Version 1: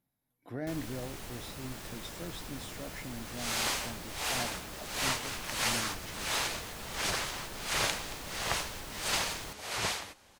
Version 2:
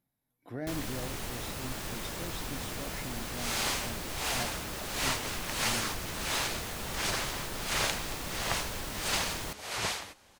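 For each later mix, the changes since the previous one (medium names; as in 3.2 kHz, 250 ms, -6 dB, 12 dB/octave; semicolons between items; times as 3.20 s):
first sound +6.0 dB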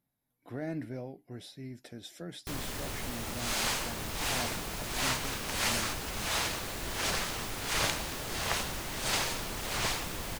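first sound: entry +1.80 s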